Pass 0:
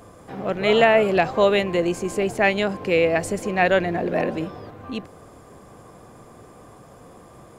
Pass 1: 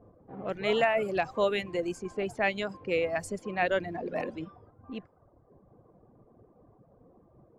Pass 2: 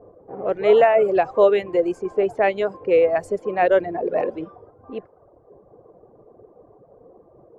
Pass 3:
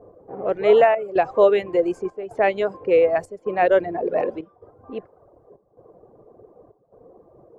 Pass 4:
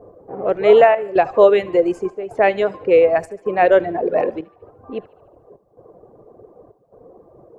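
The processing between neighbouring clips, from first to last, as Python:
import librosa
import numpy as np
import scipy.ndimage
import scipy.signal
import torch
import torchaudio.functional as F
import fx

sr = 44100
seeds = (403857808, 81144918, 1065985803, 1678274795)

y1 = fx.dereverb_blind(x, sr, rt60_s=1.3)
y1 = fx.env_lowpass(y1, sr, base_hz=540.0, full_db=-20.0)
y1 = y1 * 10.0 ** (-8.5 / 20.0)
y2 = fx.curve_eq(y1, sr, hz=(250.0, 420.0, 5100.0), db=(0, 13, -6))
y2 = y2 * 10.0 ** (1.5 / 20.0)
y3 = fx.step_gate(y2, sr, bpm=143, pattern='xxxxxxxxx..', floor_db=-12.0, edge_ms=4.5)
y4 = fx.echo_thinned(y3, sr, ms=74, feedback_pct=54, hz=520.0, wet_db=-20.5)
y4 = y4 * 10.0 ** (4.0 / 20.0)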